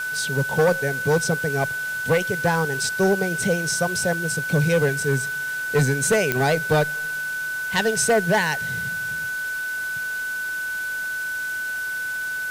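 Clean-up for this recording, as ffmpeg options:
-af "adeclick=t=4,bandreject=f=1500:w=30,afwtdn=0.011"

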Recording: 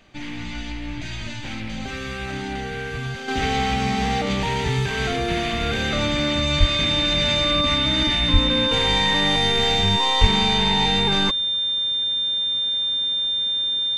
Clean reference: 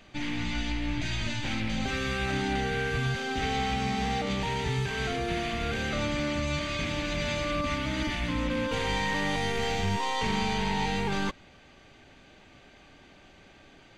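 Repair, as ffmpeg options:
-filter_complex "[0:a]bandreject=f=3600:w=30,asplit=3[s0][s1][s2];[s0]afade=t=out:st=6.59:d=0.02[s3];[s1]highpass=f=140:w=0.5412,highpass=f=140:w=1.3066,afade=t=in:st=6.59:d=0.02,afade=t=out:st=6.71:d=0.02[s4];[s2]afade=t=in:st=6.71:d=0.02[s5];[s3][s4][s5]amix=inputs=3:normalize=0,asplit=3[s6][s7][s8];[s6]afade=t=out:st=8.32:d=0.02[s9];[s7]highpass=f=140:w=0.5412,highpass=f=140:w=1.3066,afade=t=in:st=8.32:d=0.02,afade=t=out:st=8.44:d=0.02[s10];[s8]afade=t=in:st=8.44:d=0.02[s11];[s9][s10][s11]amix=inputs=3:normalize=0,asplit=3[s12][s13][s14];[s12]afade=t=out:st=10.2:d=0.02[s15];[s13]highpass=f=140:w=0.5412,highpass=f=140:w=1.3066,afade=t=in:st=10.2:d=0.02,afade=t=out:st=10.32:d=0.02[s16];[s14]afade=t=in:st=10.32:d=0.02[s17];[s15][s16][s17]amix=inputs=3:normalize=0,asetnsamples=n=441:p=0,asendcmd='3.28 volume volume -7dB',volume=1"

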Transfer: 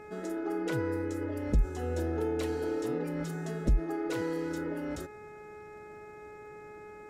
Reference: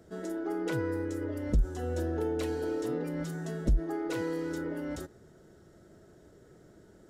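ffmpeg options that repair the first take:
-af "adeclick=t=4,bandreject=f=421.5:t=h:w=4,bandreject=f=843:t=h:w=4,bandreject=f=1264.5:t=h:w=4,bandreject=f=1686:t=h:w=4,bandreject=f=2107.5:t=h:w=4,bandreject=f=2529:t=h:w=4"

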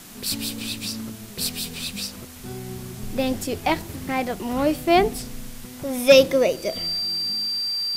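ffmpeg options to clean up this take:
-af "bandreject=f=4700:w=30,afwtdn=0.0071"

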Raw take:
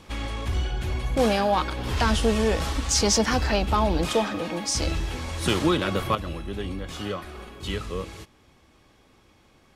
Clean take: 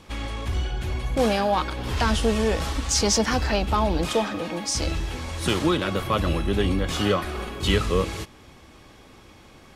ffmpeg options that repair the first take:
-af "asetnsamples=n=441:p=0,asendcmd='6.15 volume volume 9dB',volume=1"

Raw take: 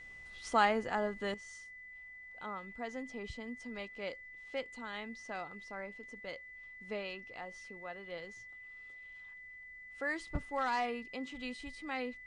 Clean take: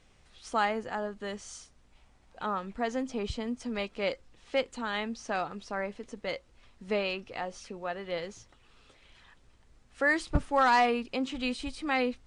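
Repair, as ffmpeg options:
-af "bandreject=f=2000:w=30,asetnsamples=n=441:p=0,asendcmd='1.34 volume volume 10.5dB',volume=1"

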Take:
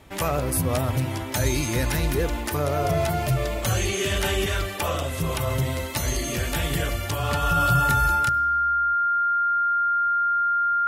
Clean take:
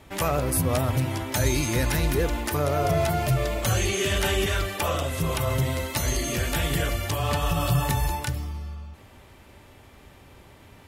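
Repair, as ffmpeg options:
-af "bandreject=f=1400:w=30,asetnsamples=n=441:p=0,asendcmd='8.29 volume volume 9.5dB',volume=1"

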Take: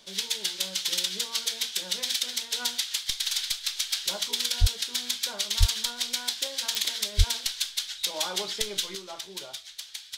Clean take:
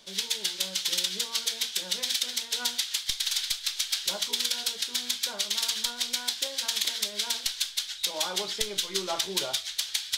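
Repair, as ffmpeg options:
-filter_complex "[0:a]adeclick=t=4,asplit=3[s0][s1][s2];[s0]afade=t=out:st=4.6:d=0.02[s3];[s1]highpass=f=140:w=0.5412,highpass=f=140:w=1.3066,afade=t=in:st=4.6:d=0.02,afade=t=out:st=4.72:d=0.02[s4];[s2]afade=t=in:st=4.72:d=0.02[s5];[s3][s4][s5]amix=inputs=3:normalize=0,asplit=3[s6][s7][s8];[s6]afade=t=out:st=5.59:d=0.02[s9];[s7]highpass=f=140:w=0.5412,highpass=f=140:w=1.3066,afade=t=in:st=5.59:d=0.02,afade=t=out:st=5.71:d=0.02[s10];[s8]afade=t=in:st=5.71:d=0.02[s11];[s9][s10][s11]amix=inputs=3:normalize=0,asplit=3[s12][s13][s14];[s12]afade=t=out:st=7.17:d=0.02[s15];[s13]highpass=f=140:w=0.5412,highpass=f=140:w=1.3066,afade=t=in:st=7.17:d=0.02,afade=t=out:st=7.29:d=0.02[s16];[s14]afade=t=in:st=7.29:d=0.02[s17];[s15][s16][s17]amix=inputs=3:normalize=0,asetnsamples=n=441:p=0,asendcmd='8.95 volume volume 9.5dB',volume=1"

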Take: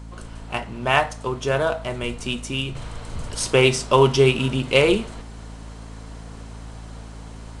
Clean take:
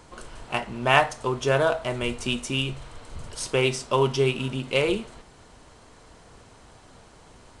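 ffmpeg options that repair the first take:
-af "bandreject=f=55.1:t=h:w=4,bandreject=f=110.2:t=h:w=4,bandreject=f=165.3:t=h:w=4,bandreject=f=220.4:t=h:w=4,bandreject=f=275.5:t=h:w=4,asetnsamples=n=441:p=0,asendcmd='2.75 volume volume -6.5dB',volume=1"

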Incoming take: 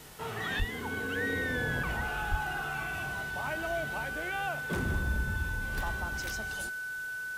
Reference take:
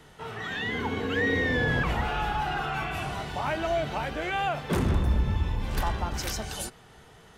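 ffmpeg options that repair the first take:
-filter_complex "[0:a]bandreject=f=1500:w=30,asplit=3[s0][s1][s2];[s0]afade=t=out:st=0.58:d=0.02[s3];[s1]highpass=f=140:w=0.5412,highpass=f=140:w=1.3066,afade=t=in:st=0.58:d=0.02,afade=t=out:st=0.7:d=0.02[s4];[s2]afade=t=in:st=0.7:d=0.02[s5];[s3][s4][s5]amix=inputs=3:normalize=0,asplit=3[s6][s7][s8];[s6]afade=t=out:st=2.3:d=0.02[s9];[s7]highpass=f=140:w=0.5412,highpass=f=140:w=1.3066,afade=t=in:st=2.3:d=0.02,afade=t=out:st=2.42:d=0.02[s10];[s8]afade=t=in:st=2.42:d=0.02[s11];[s9][s10][s11]amix=inputs=3:normalize=0,afwtdn=0.0025,asetnsamples=n=441:p=0,asendcmd='0.6 volume volume 7.5dB',volume=1"

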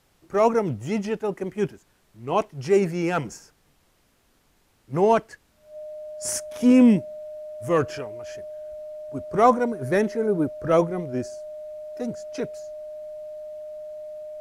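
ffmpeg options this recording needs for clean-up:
-af "bandreject=f=610:w=30,agate=range=0.0891:threshold=0.00178"

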